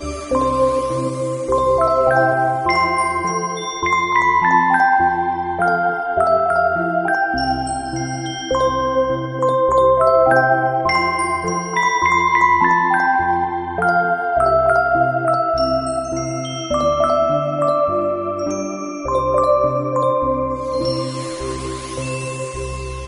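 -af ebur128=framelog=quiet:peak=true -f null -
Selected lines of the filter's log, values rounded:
Integrated loudness:
  I:         -17.4 LUFS
  Threshold: -27.3 LUFS
Loudness range:
  LRA:         3.9 LU
  Threshold: -37.1 LUFS
  LRA low:   -19.3 LUFS
  LRA high:  -15.5 LUFS
True peak:
  Peak:       -2.0 dBFS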